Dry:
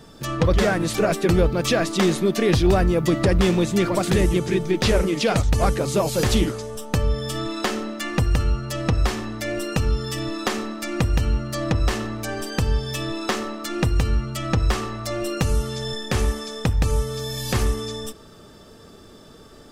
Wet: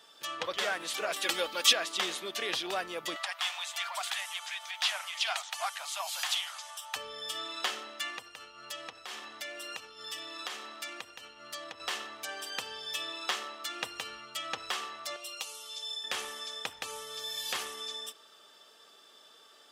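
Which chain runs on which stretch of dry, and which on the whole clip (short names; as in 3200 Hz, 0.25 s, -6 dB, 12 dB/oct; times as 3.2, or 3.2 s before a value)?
1.16–1.73 high shelf 2400 Hz +8.5 dB + comb 3.6 ms
3.16–6.96 steep high-pass 660 Hz 72 dB/oct + upward compressor, threshold -29 dBFS
8.1–11.8 HPF 40 Hz + compressor 4:1, threshold -26 dBFS
15.16–16.04 HPF 1200 Hz 6 dB/oct + bell 1700 Hz -14 dB 0.55 oct
whole clip: HPF 810 Hz 12 dB/oct; bell 3200 Hz +7.5 dB 0.52 oct; gain -7.5 dB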